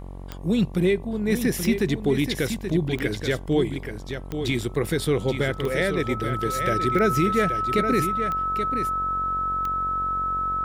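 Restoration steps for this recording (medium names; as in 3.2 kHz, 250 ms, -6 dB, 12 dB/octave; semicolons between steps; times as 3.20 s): de-click; de-hum 46 Hz, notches 25; band-stop 1.3 kHz, Q 30; inverse comb 829 ms -8 dB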